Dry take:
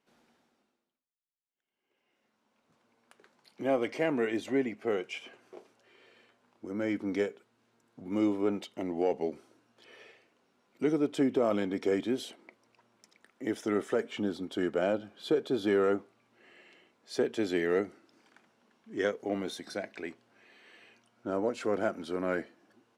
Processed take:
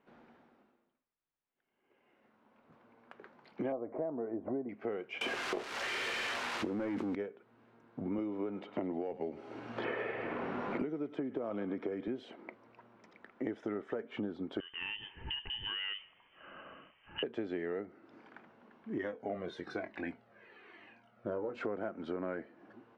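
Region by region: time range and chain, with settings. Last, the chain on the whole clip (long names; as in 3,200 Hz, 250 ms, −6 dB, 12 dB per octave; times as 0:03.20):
0:03.72–0:04.69: low-pass filter 1,100 Hz 24 dB per octave + parametric band 650 Hz +7 dB 0.23 octaves + upward compression, threshold −30 dBFS
0:05.21–0:07.15: spike at every zero crossing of −33 dBFS + leveller curve on the samples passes 2 + envelope flattener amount 100%
0:08.18–0:12.08: feedback echo with a high-pass in the loop 103 ms, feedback 67%, high-pass 930 Hz, level −15.5 dB + multiband upward and downward compressor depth 100%
0:14.60–0:17.23: downward compressor 2.5 to 1, threshold −40 dBFS + voice inversion scrambler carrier 3,300 Hz
0:18.98–0:21.55: double-tracking delay 23 ms −9 dB + flanger whose copies keep moving one way falling 1.1 Hz
whole clip: low-pass filter 1,900 Hz 12 dB per octave; downward compressor 12 to 1, threshold −42 dBFS; level +8 dB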